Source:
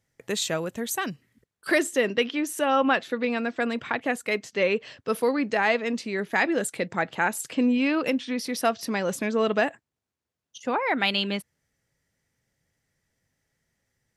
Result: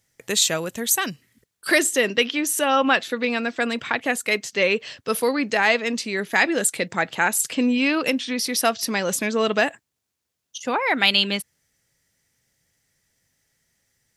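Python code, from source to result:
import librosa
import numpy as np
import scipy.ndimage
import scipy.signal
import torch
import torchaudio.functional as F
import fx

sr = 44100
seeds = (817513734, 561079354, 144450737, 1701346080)

y = fx.high_shelf(x, sr, hz=2500.0, db=10.5)
y = y * 10.0 ** (1.5 / 20.0)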